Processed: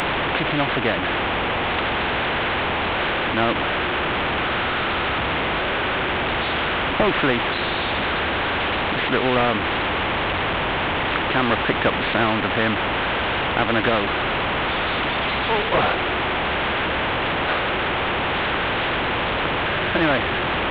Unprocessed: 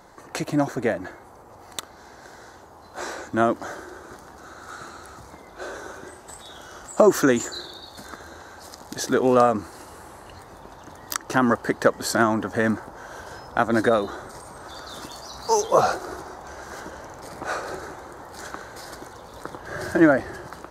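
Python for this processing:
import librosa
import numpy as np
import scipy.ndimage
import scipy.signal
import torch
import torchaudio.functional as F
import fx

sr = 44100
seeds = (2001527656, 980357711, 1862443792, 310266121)

y = fx.delta_mod(x, sr, bps=16000, step_db=-24.0)
y = fx.cheby_harmonics(y, sr, harmonics=(5,), levels_db=(-38,), full_scale_db=-4.0)
y = fx.spectral_comp(y, sr, ratio=2.0)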